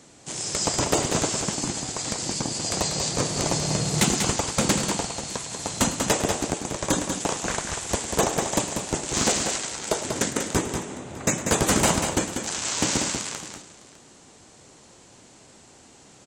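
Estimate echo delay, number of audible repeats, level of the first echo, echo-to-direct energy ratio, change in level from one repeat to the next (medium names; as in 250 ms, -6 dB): 107 ms, 3, -14.5 dB, -5.5 dB, no regular repeats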